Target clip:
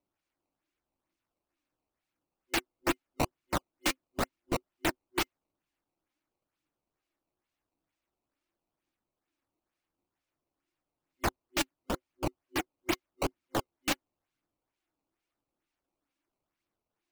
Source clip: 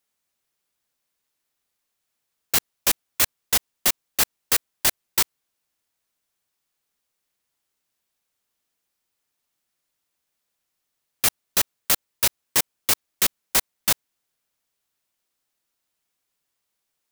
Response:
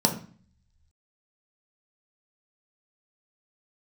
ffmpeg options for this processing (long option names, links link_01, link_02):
-filter_complex "[0:a]asettb=1/sr,asplit=3[link_01][link_02][link_03];[link_01]atrim=end=11.914[link_04];[link_02]atrim=start=11.91:end=12.93,asetpts=PTS-STARTPTS,afade=type=in:duration=0.004:curve=qsin,afade=type=out:start_time=1.016:duration=0.004:curve=qsin,acrossover=split=3100[link_05][link_06];[link_06]acompressor=threshold=-24dB:ratio=4:attack=1:release=60[link_07];[link_05][link_07]amix=inputs=2:normalize=0[link_08];[link_03]atrim=start=12.926[link_09];[link_04][link_08]acrossfade=duration=0.004:curve1=hsin:curve2=qsin[link_10];[link_10][link_09]acrossfade=duration=0.004:curve1=qsin:curve2=hsin,highshelf=frequency=2500:gain=-10,aphaser=in_gain=1:out_gain=1:delay=3.9:decay=0.48:speed=0.9:type=triangular,superequalizer=6b=3.16:7b=0.562:12b=1.78,acrossover=split=1100[link_11][link_12];[link_12]acrusher=samples=15:mix=1:aa=0.000001:lfo=1:lforange=24:lforate=2.2[link_13];[link_11][link_13]amix=inputs=2:normalize=0,volume=-4.5dB"